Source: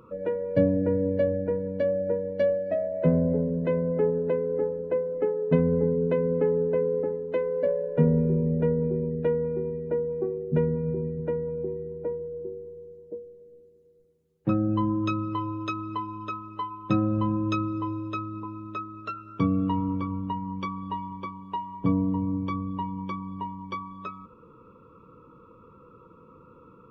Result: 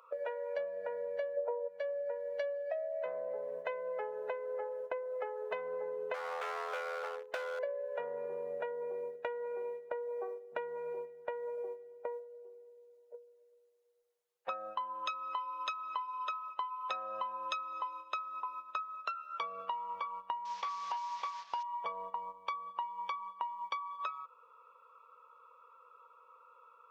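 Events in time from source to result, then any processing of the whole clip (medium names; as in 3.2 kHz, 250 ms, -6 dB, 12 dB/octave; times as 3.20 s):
1.37–1.68 s: time-frequency box 290–1400 Hz +18 dB
6.14–7.59 s: overload inside the chain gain 27.5 dB
20.45–21.63 s: one-bit delta coder 32 kbps, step -45 dBFS
whole clip: inverse Chebyshev high-pass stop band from 320 Hz, stop band 40 dB; gate -46 dBFS, range -12 dB; compression 6:1, threshold -46 dBFS; trim +9.5 dB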